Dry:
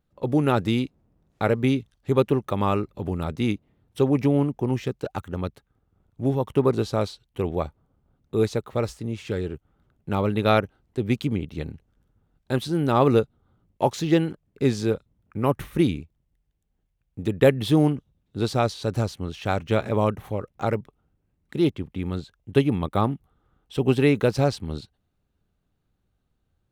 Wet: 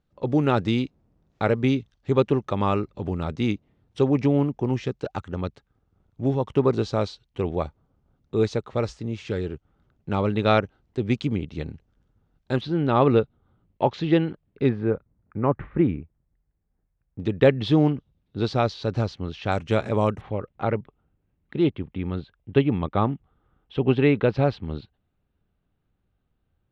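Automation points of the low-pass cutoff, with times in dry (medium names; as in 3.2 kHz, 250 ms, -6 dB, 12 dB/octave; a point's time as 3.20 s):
low-pass 24 dB/octave
6.6 kHz
from 12.61 s 3.9 kHz
from 14.69 s 2 kHz
from 17.20 s 5.1 kHz
from 19.52 s 8.4 kHz
from 20.21 s 3.5 kHz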